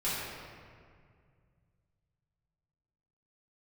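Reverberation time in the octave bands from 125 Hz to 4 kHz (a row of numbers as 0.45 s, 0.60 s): 3.5 s, 2.7 s, 2.2 s, 2.0 s, 1.8 s, 1.3 s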